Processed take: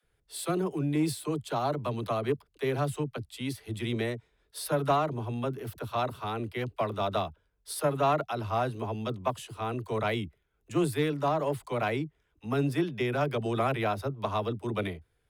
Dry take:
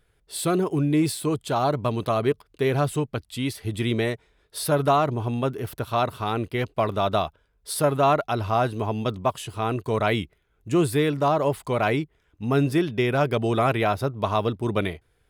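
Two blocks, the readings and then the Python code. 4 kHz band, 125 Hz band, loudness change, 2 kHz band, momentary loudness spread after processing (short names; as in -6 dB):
-6.5 dB, -7.0 dB, -6.5 dB, -6.5 dB, 9 LU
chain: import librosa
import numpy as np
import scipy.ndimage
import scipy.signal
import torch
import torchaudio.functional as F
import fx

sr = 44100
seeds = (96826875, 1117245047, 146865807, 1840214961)

y = fx.dispersion(x, sr, late='lows', ms=45.0, hz=310.0)
y = fx.cheby_harmonics(y, sr, harmonics=(3,), levels_db=(-21,), full_scale_db=-8.0)
y = y * librosa.db_to_amplitude(-4.5)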